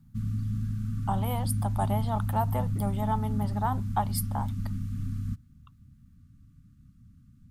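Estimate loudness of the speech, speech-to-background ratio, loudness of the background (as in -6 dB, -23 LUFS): -33.5 LUFS, -1.5 dB, -32.0 LUFS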